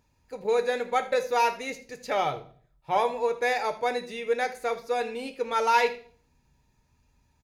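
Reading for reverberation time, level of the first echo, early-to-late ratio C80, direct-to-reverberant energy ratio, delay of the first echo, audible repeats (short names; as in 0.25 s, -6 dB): 0.50 s, -17.5 dB, 18.0 dB, 6.5 dB, 79 ms, 1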